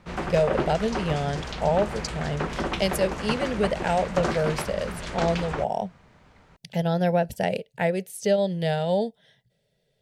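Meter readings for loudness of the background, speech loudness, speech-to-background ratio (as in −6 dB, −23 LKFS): −31.5 LKFS, −26.5 LKFS, 5.0 dB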